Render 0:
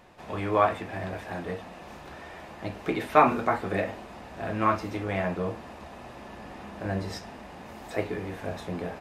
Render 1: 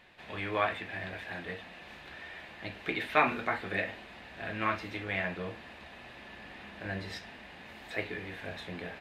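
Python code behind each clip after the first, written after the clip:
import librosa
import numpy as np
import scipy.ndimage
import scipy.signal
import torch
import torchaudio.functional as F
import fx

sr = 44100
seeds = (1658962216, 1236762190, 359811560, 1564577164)

y = fx.band_shelf(x, sr, hz=2600.0, db=11.0, octaves=1.7)
y = F.gain(torch.from_numpy(y), -8.5).numpy()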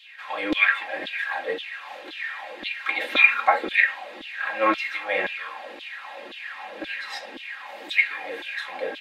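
y = fx.filter_lfo_highpass(x, sr, shape='saw_down', hz=1.9, low_hz=310.0, high_hz=3600.0, q=5.0)
y = y + 0.98 * np.pad(y, (int(3.7 * sr / 1000.0), 0))[:len(y)]
y = F.gain(torch.from_numpy(y), 4.0).numpy()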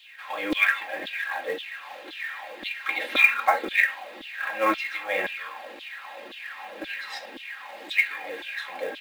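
y = fx.quant_companded(x, sr, bits=6)
y = F.gain(torch.from_numpy(y), -2.0).numpy()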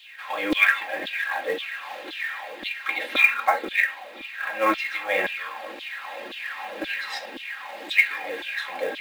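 y = fx.rider(x, sr, range_db=5, speed_s=2.0)
y = y + 10.0 ** (-23.5 / 20.0) * np.pad(y, (int(1004 * sr / 1000.0), 0))[:len(y)]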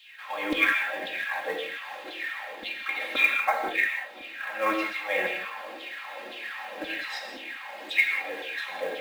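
y = fx.rev_gated(x, sr, seeds[0], gate_ms=210, shape='flat', drr_db=3.0)
y = F.gain(torch.from_numpy(y), -5.0).numpy()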